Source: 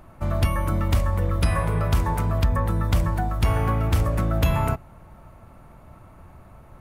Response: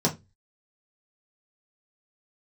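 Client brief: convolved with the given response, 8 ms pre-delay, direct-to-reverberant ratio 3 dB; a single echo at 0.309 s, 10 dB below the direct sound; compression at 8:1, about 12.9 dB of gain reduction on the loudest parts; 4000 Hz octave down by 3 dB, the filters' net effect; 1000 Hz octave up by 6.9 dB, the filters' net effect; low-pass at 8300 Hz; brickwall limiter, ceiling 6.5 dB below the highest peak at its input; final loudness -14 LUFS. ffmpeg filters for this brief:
-filter_complex "[0:a]lowpass=8.3k,equalizer=f=1k:t=o:g=8.5,equalizer=f=4k:t=o:g=-4.5,acompressor=threshold=-29dB:ratio=8,alimiter=level_in=1.5dB:limit=-24dB:level=0:latency=1,volume=-1.5dB,aecho=1:1:309:0.316,asplit=2[a][b];[1:a]atrim=start_sample=2205,adelay=8[c];[b][c]afir=irnorm=-1:irlink=0,volume=-14.5dB[d];[a][d]amix=inputs=2:normalize=0,volume=16dB"

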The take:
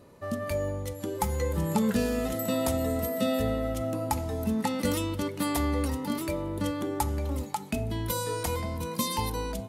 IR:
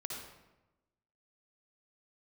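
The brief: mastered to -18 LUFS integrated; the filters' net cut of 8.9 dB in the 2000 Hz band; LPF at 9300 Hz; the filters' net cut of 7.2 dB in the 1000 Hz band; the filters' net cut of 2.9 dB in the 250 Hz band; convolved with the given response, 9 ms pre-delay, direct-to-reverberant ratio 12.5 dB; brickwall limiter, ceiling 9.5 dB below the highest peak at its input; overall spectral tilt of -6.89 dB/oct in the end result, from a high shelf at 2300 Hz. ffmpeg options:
-filter_complex "[0:a]lowpass=9.3k,equalizer=f=250:t=o:g=-3,equalizer=f=1k:t=o:g=-6.5,equalizer=f=2k:t=o:g=-6.5,highshelf=f=2.3k:g=-5,alimiter=level_in=3dB:limit=-24dB:level=0:latency=1,volume=-3dB,asplit=2[a][b];[1:a]atrim=start_sample=2205,adelay=9[c];[b][c]afir=irnorm=-1:irlink=0,volume=-12.5dB[d];[a][d]amix=inputs=2:normalize=0,volume=18dB"

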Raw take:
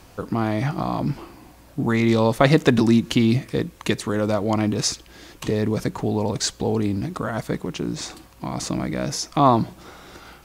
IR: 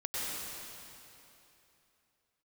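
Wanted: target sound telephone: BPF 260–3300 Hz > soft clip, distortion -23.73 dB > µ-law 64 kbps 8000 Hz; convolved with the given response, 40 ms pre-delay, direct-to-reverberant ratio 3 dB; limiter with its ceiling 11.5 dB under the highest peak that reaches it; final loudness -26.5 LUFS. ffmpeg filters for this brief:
-filter_complex "[0:a]alimiter=limit=-12.5dB:level=0:latency=1,asplit=2[a][b];[1:a]atrim=start_sample=2205,adelay=40[c];[b][c]afir=irnorm=-1:irlink=0,volume=-8.5dB[d];[a][d]amix=inputs=2:normalize=0,highpass=260,lowpass=3.3k,asoftclip=threshold=-12dB,volume=0.5dB" -ar 8000 -c:a pcm_mulaw

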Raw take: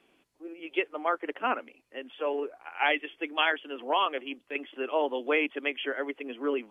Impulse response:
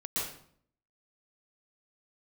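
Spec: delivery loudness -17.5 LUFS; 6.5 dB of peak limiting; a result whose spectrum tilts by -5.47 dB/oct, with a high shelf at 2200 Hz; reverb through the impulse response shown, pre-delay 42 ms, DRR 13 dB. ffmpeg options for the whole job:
-filter_complex "[0:a]highshelf=f=2.2k:g=-6.5,alimiter=limit=-20dB:level=0:latency=1,asplit=2[a][b];[1:a]atrim=start_sample=2205,adelay=42[c];[b][c]afir=irnorm=-1:irlink=0,volume=-18dB[d];[a][d]amix=inputs=2:normalize=0,volume=16dB"

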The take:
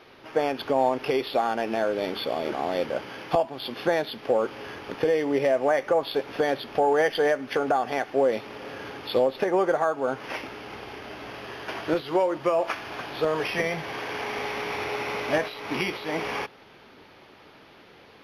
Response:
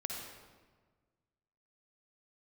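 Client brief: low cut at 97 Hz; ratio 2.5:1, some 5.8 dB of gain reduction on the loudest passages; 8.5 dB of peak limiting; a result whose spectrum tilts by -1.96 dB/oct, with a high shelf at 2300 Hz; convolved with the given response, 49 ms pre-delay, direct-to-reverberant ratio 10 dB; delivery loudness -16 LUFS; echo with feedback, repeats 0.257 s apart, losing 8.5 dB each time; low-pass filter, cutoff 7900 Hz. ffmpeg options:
-filter_complex "[0:a]highpass=97,lowpass=7.9k,highshelf=f=2.3k:g=3,acompressor=threshold=-26dB:ratio=2.5,alimiter=limit=-21dB:level=0:latency=1,aecho=1:1:257|514|771|1028:0.376|0.143|0.0543|0.0206,asplit=2[a][b];[1:a]atrim=start_sample=2205,adelay=49[c];[b][c]afir=irnorm=-1:irlink=0,volume=-11dB[d];[a][d]amix=inputs=2:normalize=0,volume=15dB"

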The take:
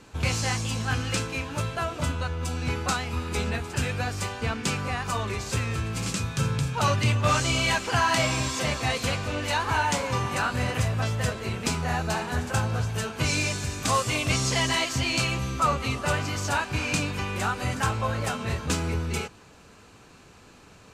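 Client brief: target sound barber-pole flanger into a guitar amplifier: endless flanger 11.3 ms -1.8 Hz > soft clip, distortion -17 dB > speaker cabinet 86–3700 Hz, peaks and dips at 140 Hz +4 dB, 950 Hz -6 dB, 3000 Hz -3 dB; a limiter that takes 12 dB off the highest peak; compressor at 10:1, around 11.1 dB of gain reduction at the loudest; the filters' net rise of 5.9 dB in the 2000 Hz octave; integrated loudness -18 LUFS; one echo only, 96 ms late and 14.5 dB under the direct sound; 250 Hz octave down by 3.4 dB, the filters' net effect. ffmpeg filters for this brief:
-filter_complex "[0:a]equalizer=f=250:t=o:g=-6,equalizer=f=2k:t=o:g=8.5,acompressor=threshold=-28dB:ratio=10,alimiter=level_in=3.5dB:limit=-24dB:level=0:latency=1,volume=-3.5dB,aecho=1:1:96:0.188,asplit=2[a][b];[b]adelay=11.3,afreqshift=-1.8[c];[a][c]amix=inputs=2:normalize=1,asoftclip=threshold=-34dB,highpass=86,equalizer=f=140:t=q:w=4:g=4,equalizer=f=950:t=q:w=4:g=-6,equalizer=f=3k:t=q:w=4:g=-3,lowpass=f=3.7k:w=0.5412,lowpass=f=3.7k:w=1.3066,volume=23.5dB"

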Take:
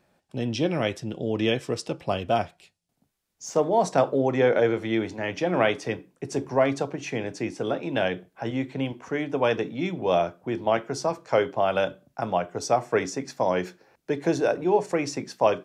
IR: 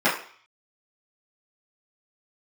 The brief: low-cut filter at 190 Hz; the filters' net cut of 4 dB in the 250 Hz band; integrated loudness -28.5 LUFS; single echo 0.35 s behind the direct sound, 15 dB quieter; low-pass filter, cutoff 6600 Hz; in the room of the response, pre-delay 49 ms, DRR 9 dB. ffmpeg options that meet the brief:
-filter_complex "[0:a]highpass=190,lowpass=6.6k,equalizer=f=250:t=o:g=-4,aecho=1:1:350:0.178,asplit=2[a][b];[1:a]atrim=start_sample=2205,adelay=49[c];[b][c]afir=irnorm=-1:irlink=0,volume=-27.5dB[d];[a][d]amix=inputs=2:normalize=0,volume=-1.5dB"

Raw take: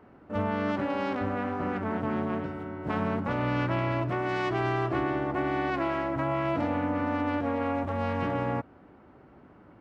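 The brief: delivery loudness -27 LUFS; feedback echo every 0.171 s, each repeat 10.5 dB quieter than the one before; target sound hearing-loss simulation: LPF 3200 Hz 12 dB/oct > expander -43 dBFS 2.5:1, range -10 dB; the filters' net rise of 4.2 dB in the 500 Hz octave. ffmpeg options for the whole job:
-af "lowpass=3.2k,equalizer=f=500:t=o:g=5.5,aecho=1:1:171|342|513:0.299|0.0896|0.0269,agate=range=-10dB:threshold=-43dB:ratio=2.5,volume=0.5dB"

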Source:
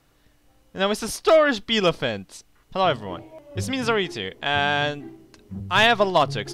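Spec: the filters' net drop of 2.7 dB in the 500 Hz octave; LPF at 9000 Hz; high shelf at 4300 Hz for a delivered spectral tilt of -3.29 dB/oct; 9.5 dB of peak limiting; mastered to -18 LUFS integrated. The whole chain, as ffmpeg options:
-af "lowpass=9k,equalizer=f=500:t=o:g=-3.5,highshelf=f=4.3k:g=-6.5,volume=12dB,alimiter=limit=-6.5dB:level=0:latency=1"

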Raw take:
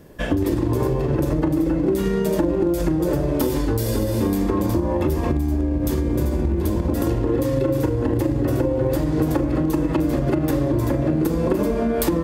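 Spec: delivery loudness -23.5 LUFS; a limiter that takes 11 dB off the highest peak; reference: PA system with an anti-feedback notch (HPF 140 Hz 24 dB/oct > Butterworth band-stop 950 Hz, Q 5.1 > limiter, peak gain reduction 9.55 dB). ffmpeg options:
-af "alimiter=limit=-18.5dB:level=0:latency=1,highpass=f=140:w=0.5412,highpass=f=140:w=1.3066,asuperstop=centerf=950:order=8:qfactor=5.1,volume=10.5dB,alimiter=limit=-16dB:level=0:latency=1"

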